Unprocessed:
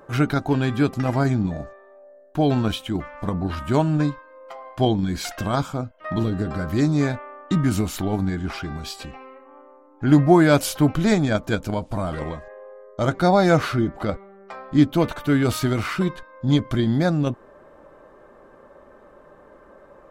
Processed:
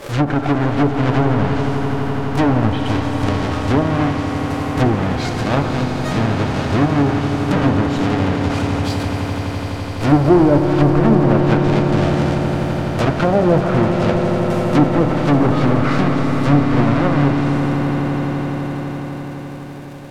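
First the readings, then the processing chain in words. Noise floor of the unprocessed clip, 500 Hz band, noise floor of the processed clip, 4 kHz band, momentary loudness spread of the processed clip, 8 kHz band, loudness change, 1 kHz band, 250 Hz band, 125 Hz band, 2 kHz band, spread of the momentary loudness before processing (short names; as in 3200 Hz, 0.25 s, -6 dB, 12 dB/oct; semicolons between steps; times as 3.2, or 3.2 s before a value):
-50 dBFS, +6.0 dB, -27 dBFS, +3.5 dB, 8 LU, -1.5 dB, +5.0 dB, +7.0 dB, +6.0 dB, +7.0 dB, +5.5 dB, 15 LU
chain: half-waves squared off; Schroeder reverb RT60 1.9 s, combs from 28 ms, DRR 8 dB; treble ducked by the level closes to 750 Hz, closed at -9 dBFS; bell 170 Hz -5.5 dB 0.58 oct; on a send: swelling echo 84 ms, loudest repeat 8, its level -14 dB; on the sum: backwards sustainer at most 130 dB/s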